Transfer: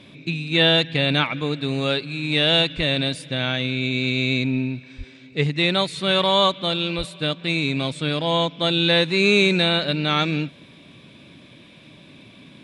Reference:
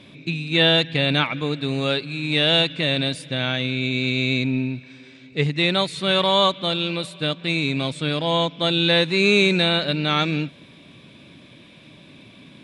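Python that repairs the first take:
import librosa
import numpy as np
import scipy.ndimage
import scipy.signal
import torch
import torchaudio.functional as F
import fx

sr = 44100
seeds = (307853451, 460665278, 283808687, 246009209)

y = fx.highpass(x, sr, hz=140.0, slope=24, at=(2.76, 2.88), fade=0.02)
y = fx.highpass(y, sr, hz=140.0, slope=24, at=(4.97, 5.09), fade=0.02)
y = fx.highpass(y, sr, hz=140.0, slope=24, at=(6.97, 7.09), fade=0.02)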